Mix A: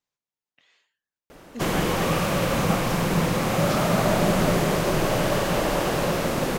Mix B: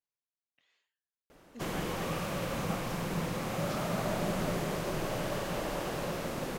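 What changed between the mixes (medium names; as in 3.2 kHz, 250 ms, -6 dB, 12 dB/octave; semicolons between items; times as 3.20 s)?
speech -11.5 dB; background -11.5 dB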